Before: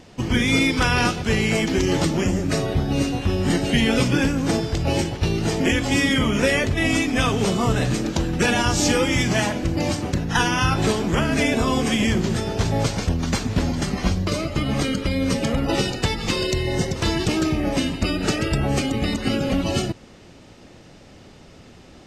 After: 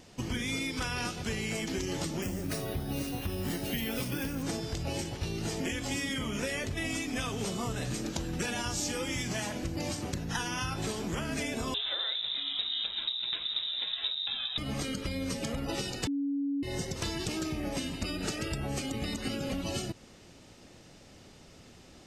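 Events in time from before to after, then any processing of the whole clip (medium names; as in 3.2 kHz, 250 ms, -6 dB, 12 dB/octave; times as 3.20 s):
2.22–4.43 s: careless resampling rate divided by 3×, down filtered, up hold
11.74–14.58 s: frequency inversion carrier 3.8 kHz
16.07–16.63 s: bleep 281 Hz -12 dBFS
whole clip: treble shelf 4.9 kHz +9.5 dB; compression, threshold -22 dBFS; trim -8.5 dB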